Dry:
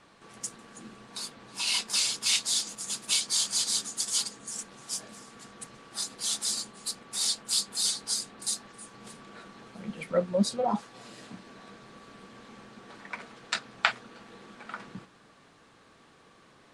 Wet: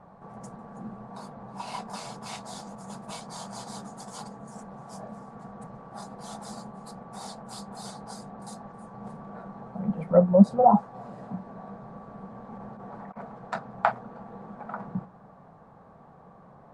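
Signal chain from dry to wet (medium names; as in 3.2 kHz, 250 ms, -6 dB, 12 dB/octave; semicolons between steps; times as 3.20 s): FFT filter 110 Hz 0 dB, 180 Hz +5 dB, 310 Hz -10 dB, 760 Hz +5 dB, 2.9 kHz -27 dB; 12.52–13.17 s: compressor with a negative ratio -50 dBFS, ratio -0.5; trim +8.5 dB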